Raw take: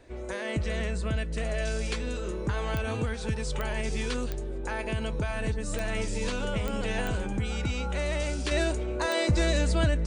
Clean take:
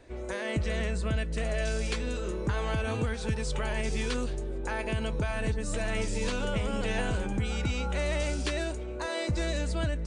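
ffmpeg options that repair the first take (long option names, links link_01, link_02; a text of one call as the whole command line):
ffmpeg -i in.wav -af "adeclick=threshold=4,asetnsamples=nb_out_samples=441:pad=0,asendcmd='8.51 volume volume -5.5dB',volume=0dB" out.wav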